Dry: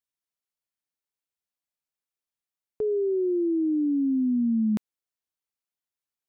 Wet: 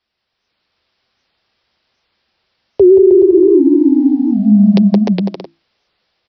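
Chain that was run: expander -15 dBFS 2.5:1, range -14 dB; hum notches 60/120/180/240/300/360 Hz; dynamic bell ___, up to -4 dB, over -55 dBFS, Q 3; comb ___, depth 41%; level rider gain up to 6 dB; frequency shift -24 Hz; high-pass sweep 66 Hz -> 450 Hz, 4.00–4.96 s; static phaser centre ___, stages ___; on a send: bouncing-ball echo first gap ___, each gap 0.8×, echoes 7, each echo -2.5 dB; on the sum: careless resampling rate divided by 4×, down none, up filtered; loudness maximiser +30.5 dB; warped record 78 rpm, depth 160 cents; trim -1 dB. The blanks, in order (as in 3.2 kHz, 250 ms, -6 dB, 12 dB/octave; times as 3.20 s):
140 Hz, 7.2 ms, 580 Hz, 4, 170 ms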